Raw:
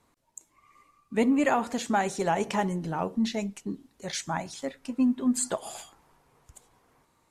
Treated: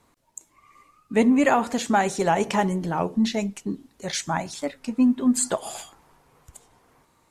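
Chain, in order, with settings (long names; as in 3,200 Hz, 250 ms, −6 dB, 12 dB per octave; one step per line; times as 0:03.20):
wow of a warped record 33 1/3 rpm, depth 100 cents
level +5 dB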